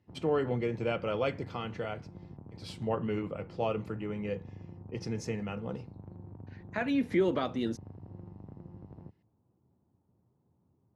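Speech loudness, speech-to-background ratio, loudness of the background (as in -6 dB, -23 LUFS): -34.0 LUFS, 15.0 dB, -49.0 LUFS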